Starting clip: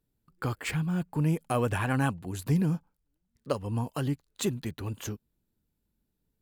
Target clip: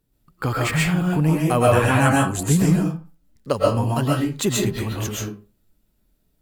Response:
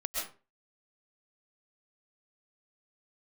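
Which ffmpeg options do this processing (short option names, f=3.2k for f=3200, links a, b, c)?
-filter_complex "[0:a]asettb=1/sr,asplit=3[a][b][c];[a]atrim=end=1.984[d];[b]atrim=start=1.98:end=2.66,asetpts=PTS-STARTPTS,afade=t=in:d=0.004:c=qsin,afade=t=out:st=0.676:d=0.004:c=qsin,equalizer=f=7.7k:t=o:w=0.56:g=10[e];[c]atrim=start=2.656[f];[d][e]acrossfade=d=0.004:c1=hsin:c2=qsin[g];[g][f]acrossfade=d=0.004:c1=qsin:c2=hsin[h];[1:a]atrim=start_sample=2205[i];[h][i]afir=irnorm=-1:irlink=0,volume=8.5dB"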